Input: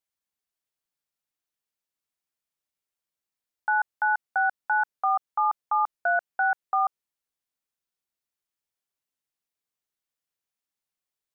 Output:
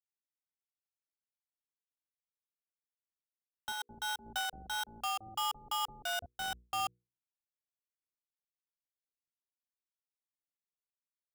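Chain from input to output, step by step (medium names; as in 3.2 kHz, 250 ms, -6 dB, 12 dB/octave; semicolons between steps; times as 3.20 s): dead-time distortion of 0.25 ms; bass shelf 370 Hz +10 dB; hum notches 60/120/180/240/300/360/420/480 Hz; peak limiter -20 dBFS, peak gain reduction 4 dB; 3.72–6.26 s: bands offset in time highs, lows 170 ms, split 510 Hz; random flutter of the level, depth 55%; trim -3.5 dB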